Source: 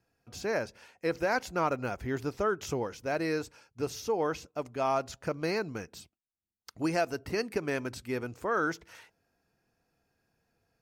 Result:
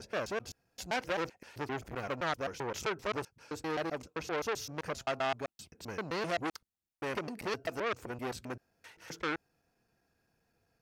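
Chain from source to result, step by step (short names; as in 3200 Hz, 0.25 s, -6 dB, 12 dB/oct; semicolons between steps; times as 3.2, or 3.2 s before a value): slices in reverse order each 0.13 s, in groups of 6; core saturation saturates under 2500 Hz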